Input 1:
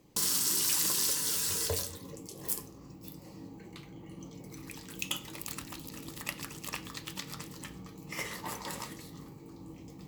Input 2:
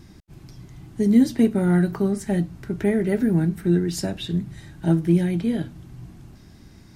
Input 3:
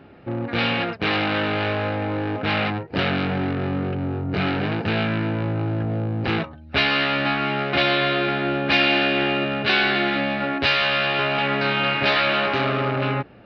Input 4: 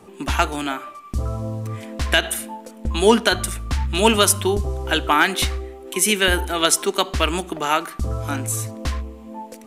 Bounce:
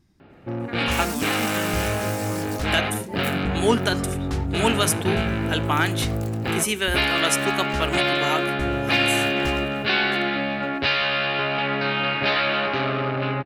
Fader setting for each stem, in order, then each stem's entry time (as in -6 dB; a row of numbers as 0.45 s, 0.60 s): -5.5 dB, -16.0 dB, -2.0 dB, -6.0 dB; 0.75 s, 0.00 s, 0.20 s, 0.60 s